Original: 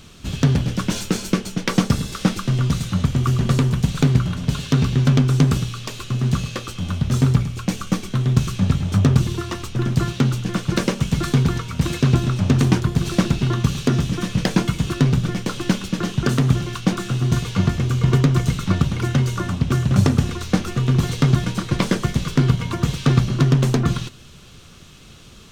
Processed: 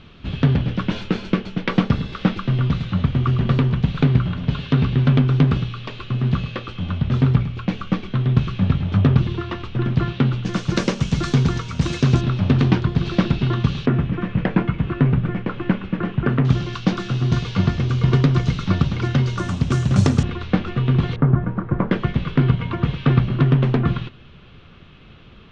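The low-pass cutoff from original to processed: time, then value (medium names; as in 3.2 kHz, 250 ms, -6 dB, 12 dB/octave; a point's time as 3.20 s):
low-pass 24 dB/octave
3.5 kHz
from 10.45 s 6.6 kHz
from 12.21 s 4.1 kHz
from 13.86 s 2.4 kHz
from 16.45 s 5 kHz
from 19.38 s 8.1 kHz
from 20.23 s 3.4 kHz
from 21.16 s 1.5 kHz
from 21.91 s 3.1 kHz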